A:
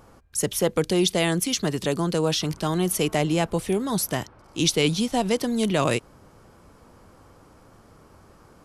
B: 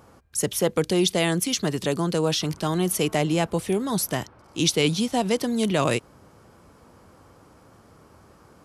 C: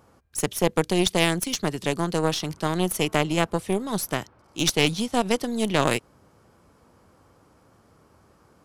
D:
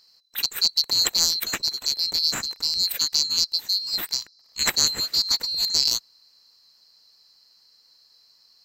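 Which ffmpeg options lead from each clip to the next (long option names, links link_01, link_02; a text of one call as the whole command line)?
ffmpeg -i in.wav -af "highpass=58" out.wav
ffmpeg -i in.wav -af "aeval=exprs='0.398*(cos(1*acos(clip(val(0)/0.398,-1,1)))-cos(1*PI/2))+0.158*(cos(2*acos(clip(val(0)/0.398,-1,1)))-cos(2*PI/2))+0.0224*(cos(3*acos(clip(val(0)/0.398,-1,1)))-cos(3*PI/2))+0.0158*(cos(7*acos(clip(val(0)/0.398,-1,1)))-cos(7*PI/2))+0.00501*(cos(8*acos(clip(val(0)/0.398,-1,1)))-cos(8*PI/2))':channel_layout=same" out.wav
ffmpeg -i in.wav -af "afftfilt=real='real(if(lt(b,736),b+184*(1-2*mod(floor(b/184),2)),b),0)':imag='imag(if(lt(b,736),b+184*(1-2*mod(floor(b/184),2)),b),0)':win_size=2048:overlap=0.75" out.wav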